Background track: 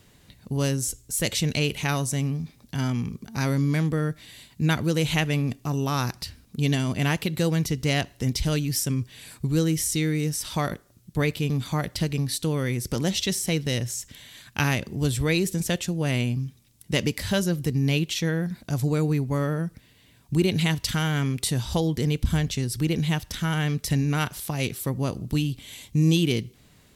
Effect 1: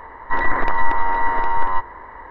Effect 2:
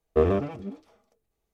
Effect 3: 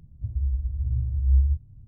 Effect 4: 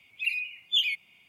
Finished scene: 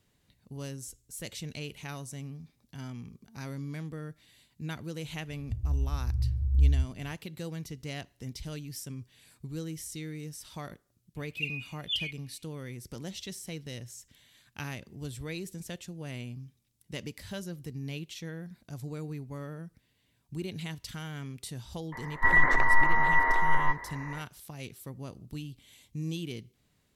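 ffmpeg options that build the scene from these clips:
-filter_complex "[0:a]volume=0.178[s0];[4:a]equalizer=f=2800:w=1.5:g=12.5[s1];[1:a]equalizer=f=2000:t=o:w=0.26:g=11.5[s2];[3:a]atrim=end=1.87,asetpts=PTS-STARTPTS,volume=0.708,afade=t=in:d=0.004:c=hsin,afade=t=out:st=1.866:d=0.004:c=hsin,adelay=5280[s3];[s1]atrim=end=1.28,asetpts=PTS-STARTPTS,volume=0.133,afade=t=in:d=0.004:c=hsin,afade=t=out:st=1.276:d=0.004:c=hsin,adelay=11160[s4];[s2]atrim=end=2.3,asetpts=PTS-STARTPTS,volume=0.422,afade=t=in:d=0.004:c=hsin,afade=t=out:st=2.296:d=0.004:c=hsin,adelay=21920[s5];[s0][s3][s4][s5]amix=inputs=4:normalize=0"

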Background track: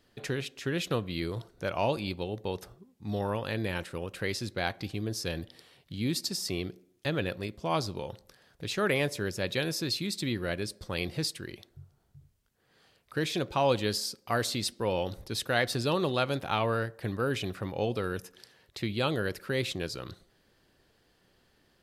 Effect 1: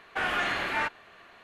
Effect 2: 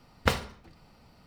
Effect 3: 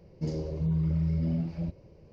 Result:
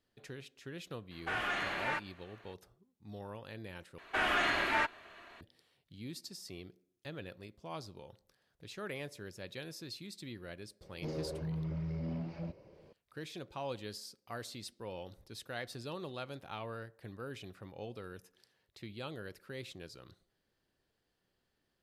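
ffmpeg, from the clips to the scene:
-filter_complex "[1:a]asplit=2[s0][s1];[0:a]volume=0.188[s2];[s1]aecho=1:1:3.1:0.32[s3];[3:a]asplit=2[s4][s5];[s5]highpass=f=720:p=1,volume=8.91,asoftclip=type=tanh:threshold=0.1[s6];[s4][s6]amix=inputs=2:normalize=0,lowpass=f=2300:p=1,volume=0.501[s7];[s2]asplit=2[s8][s9];[s8]atrim=end=3.984[s10];[s3]atrim=end=1.43,asetpts=PTS-STARTPTS,volume=0.794[s11];[s9]atrim=start=5.406[s12];[s0]atrim=end=1.43,asetpts=PTS-STARTPTS,volume=0.447,afade=t=in:d=0.004:c=hsin,afade=t=out:st=1.426:d=0.004:c=hsin,adelay=1110[s13];[s7]atrim=end=2.12,asetpts=PTS-STARTPTS,volume=0.335,afade=t=in:d=0.004:c=hsin,afade=t=out:st=2.116:d=0.004:c=hsin,adelay=10810[s14];[s10][s11]acrossfade=d=0.004:c1=hsin:c2=hsin[s15];[s15][s12]acrossfade=d=0.004:c1=hsin:c2=hsin[s16];[s16][s13][s14]amix=inputs=3:normalize=0"

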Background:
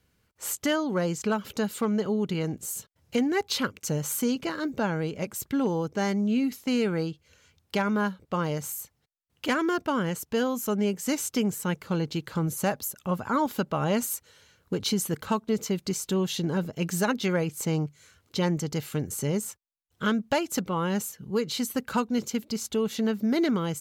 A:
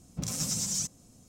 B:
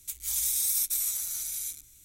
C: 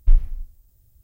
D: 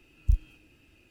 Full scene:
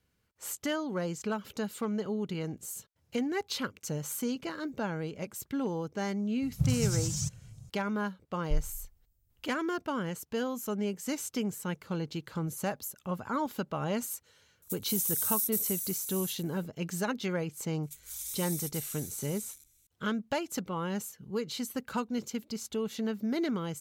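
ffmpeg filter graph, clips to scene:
-filter_complex "[2:a]asplit=2[s0][s1];[0:a]volume=0.473[s2];[1:a]lowshelf=f=180:t=q:w=3:g=12[s3];[s0]aemphasis=mode=production:type=50fm[s4];[s3]atrim=end=1.28,asetpts=PTS-STARTPTS,volume=0.562,afade=t=in:d=0.004:c=hsin,afade=t=out:st=1.276:d=0.004:c=hsin,adelay=283122S[s5];[3:a]atrim=end=1.03,asetpts=PTS-STARTPTS,volume=0.178,afade=t=in:d=0.004:c=hsin,afade=t=out:st=1.026:d=0.004:c=hsin,adelay=8430[s6];[s4]atrim=end=2.04,asetpts=PTS-STARTPTS,volume=0.158,afade=t=in:d=0.004:c=hsin,afade=t=out:st=2.036:d=0.004:c=hsin,adelay=14620[s7];[s1]atrim=end=2.04,asetpts=PTS-STARTPTS,volume=0.282,afade=t=in:d=0.004:c=hsin,afade=t=out:st=2.036:d=0.004:c=hsin,adelay=17830[s8];[s2][s5][s6][s7][s8]amix=inputs=5:normalize=0"

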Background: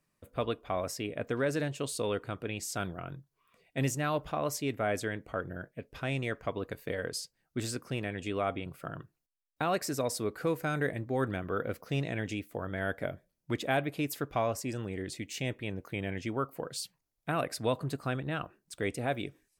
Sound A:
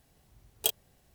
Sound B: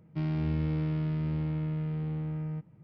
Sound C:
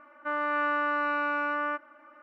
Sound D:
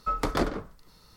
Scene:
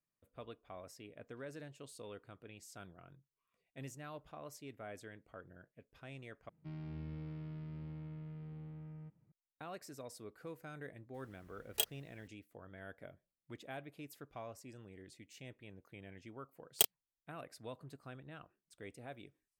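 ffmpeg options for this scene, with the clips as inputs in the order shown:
-filter_complex "[1:a]asplit=2[s0][s1];[0:a]volume=0.133[s2];[s0]equalizer=f=1900:t=o:w=0.77:g=9.5[s3];[s1]acrusher=bits=3:mix=0:aa=0.5[s4];[s2]asplit=2[s5][s6];[s5]atrim=end=6.494[s7];[2:a]atrim=end=2.83,asetpts=PTS-STARTPTS,volume=0.168[s8];[s6]atrim=start=9.316[s9];[s3]atrim=end=1.14,asetpts=PTS-STARTPTS,volume=0.447,afade=t=in:d=0.004:c=hsin,afade=t=out:st=1.136:d=0.004:c=hsin,adelay=491274S[s10];[s4]atrim=end=1.14,asetpts=PTS-STARTPTS,volume=0.841,afade=t=in:d=0.004:c=hsin,afade=t=out:st=1.136:d=0.004:c=hsin,adelay=16150[s11];[s7][s8]acrossfade=d=0.004:c1=hsin:c2=hsin[s12];[s12][s9]acrossfade=d=0.004:c1=hsin:c2=hsin[s13];[s13][s10][s11]amix=inputs=3:normalize=0"

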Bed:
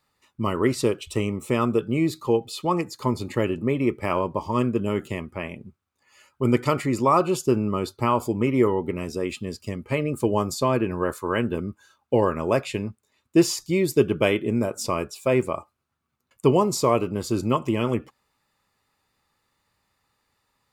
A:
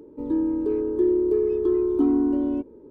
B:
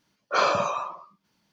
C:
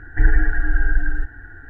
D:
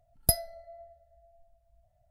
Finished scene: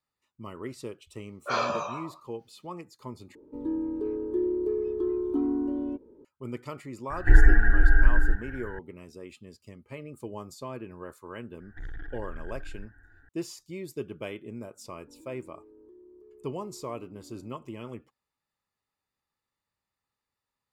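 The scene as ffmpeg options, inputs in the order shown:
-filter_complex "[1:a]asplit=2[s0][s1];[3:a]asplit=2[s2][s3];[0:a]volume=0.15[s4];[2:a]asplit=2[s5][s6];[s6]adelay=14,volume=0.631[s7];[s5][s7]amix=inputs=2:normalize=0[s8];[s3]asoftclip=type=tanh:threshold=0.168[s9];[s1]acompressor=threshold=0.02:ratio=6:attack=3.2:release=140:knee=1:detection=peak[s10];[s4]asplit=2[s11][s12];[s11]atrim=end=3.354[s13];[s0]atrim=end=2.9,asetpts=PTS-STARTPTS,volume=0.447[s14];[s12]atrim=start=6.246[s15];[s8]atrim=end=1.52,asetpts=PTS-STARTPTS,volume=0.422,afade=t=in:d=0.004:c=hsin,afade=t=out:st=1.516:d=0.004:c=hsin,adelay=1150[s16];[s2]atrim=end=1.69,asetpts=PTS-STARTPTS,volume=0.944,afade=t=in:d=0.004:c=hsin,afade=t=out:st=1.686:d=0.004:c=hsin,adelay=7100[s17];[s9]atrim=end=1.69,asetpts=PTS-STARTPTS,volume=0.133,afade=t=in:d=0.004:c=hsin,afade=t=out:st=1.686:d=0.004:c=hsin,adelay=11600[s18];[s10]atrim=end=2.9,asetpts=PTS-STARTPTS,volume=0.126,afade=t=in:d=0.004:c=hsin,afade=t=out:st=2.896:d=0.004:c=hsin,adelay=14900[s19];[s13][s14]acrossfade=d=0.004:c1=hsin:c2=hsin[s20];[s20][s15]acrossfade=d=0.004:c1=hsin:c2=hsin[s21];[s21][s16][s17][s18][s19]amix=inputs=5:normalize=0"

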